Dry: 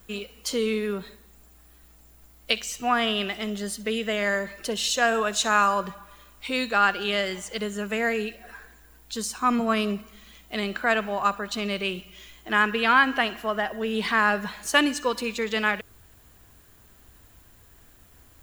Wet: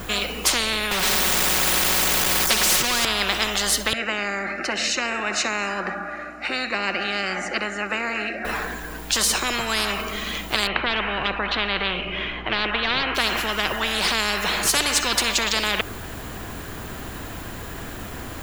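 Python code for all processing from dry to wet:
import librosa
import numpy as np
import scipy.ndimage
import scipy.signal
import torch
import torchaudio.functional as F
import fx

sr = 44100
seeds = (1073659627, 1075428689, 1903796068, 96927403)

y = fx.chain(x, sr, fx.zero_step(step_db=-31.5),
    fx.comb(ms=5.4, depth=0.96), at=(0.91, 3.05))
y = fx.chain(y, sr, fx.bandpass_edges(low_hz=200.0, high_hz=3200.0),
    fx.fixed_phaser(hz=670.0, stages=8), at=(3.93, 8.45))
y = fx.chain(y, sr, fx.clip_hard(threshold_db=-14.5),
    fx.lowpass(hz=2900.0, slope=24), at=(10.67, 13.15))
y = fx.high_shelf(y, sr, hz=4700.0, db=-11.5)
y = fx.spectral_comp(y, sr, ratio=10.0)
y = F.gain(torch.from_numpy(y), 4.0).numpy()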